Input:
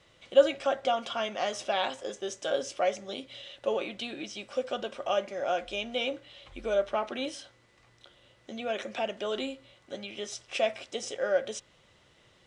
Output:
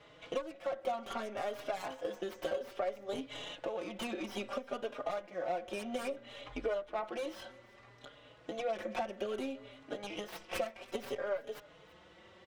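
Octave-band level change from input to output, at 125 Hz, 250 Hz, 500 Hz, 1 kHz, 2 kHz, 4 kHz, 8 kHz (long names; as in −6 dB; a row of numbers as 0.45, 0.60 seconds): can't be measured, −3.5 dB, −8.0 dB, −7.0 dB, −7.5 dB, −10.5 dB, −11.0 dB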